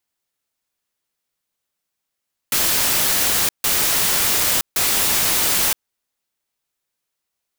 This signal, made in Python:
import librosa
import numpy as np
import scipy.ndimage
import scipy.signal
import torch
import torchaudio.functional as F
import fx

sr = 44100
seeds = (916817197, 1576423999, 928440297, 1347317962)

y = fx.noise_burst(sr, seeds[0], colour='white', on_s=0.97, off_s=0.15, bursts=3, level_db=-18.0)